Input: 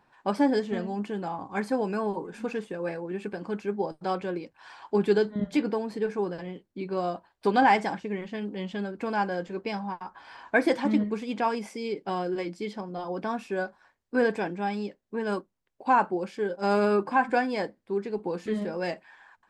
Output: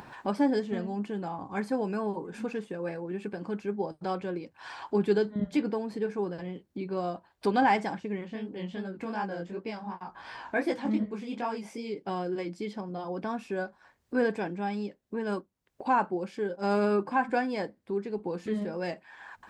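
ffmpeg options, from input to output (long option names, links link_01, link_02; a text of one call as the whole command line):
ffmpeg -i in.wav -filter_complex "[0:a]asplit=3[link_01][link_02][link_03];[link_01]afade=type=out:start_time=8.24:duration=0.02[link_04];[link_02]flanger=delay=16:depth=7.2:speed=2.7,afade=type=in:start_time=8.24:duration=0.02,afade=type=out:start_time=11.94:duration=0.02[link_05];[link_03]afade=type=in:start_time=11.94:duration=0.02[link_06];[link_04][link_05][link_06]amix=inputs=3:normalize=0,highpass=42,lowshelf=frequency=250:gain=5,acompressor=mode=upward:threshold=-28dB:ratio=2.5,volume=-4dB" out.wav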